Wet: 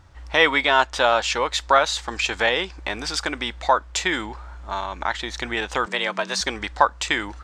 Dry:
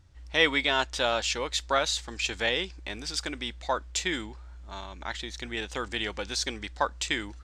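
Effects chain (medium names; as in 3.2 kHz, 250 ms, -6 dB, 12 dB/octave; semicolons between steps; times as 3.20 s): peaking EQ 1 kHz +11 dB 2.1 oct; in parallel at +2.5 dB: compression, threshold -31 dBFS, peak gain reduction 18.5 dB; 5.86–6.41 s: on the sum: frequency shift +130 Hz; trim -1 dB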